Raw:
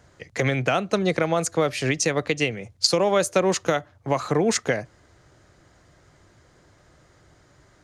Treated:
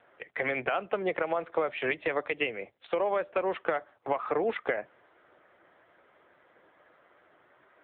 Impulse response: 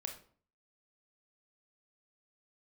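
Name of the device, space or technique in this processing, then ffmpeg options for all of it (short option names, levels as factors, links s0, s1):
voicemail: -af "highpass=440,lowpass=2700,acompressor=threshold=0.0501:ratio=10,volume=1.33" -ar 8000 -c:a libopencore_amrnb -b:a 6700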